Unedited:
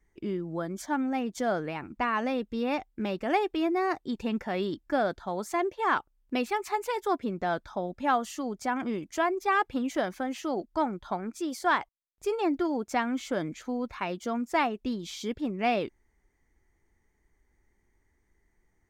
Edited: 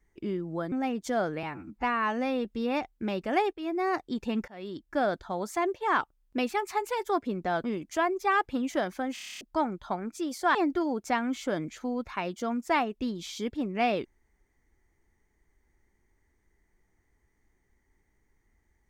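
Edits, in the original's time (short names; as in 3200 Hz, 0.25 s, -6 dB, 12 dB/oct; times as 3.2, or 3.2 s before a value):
0.72–1.03 cut
1.74–2.42 stretch 1.5×
3.5–3.85 fade in linear, from -14 dB
4.45–5.01 fade in, from -22.5 dB
7.61–8.85 cut
10.35 stutter in place 0.03 s, 9 plays
11.76–12.39 cut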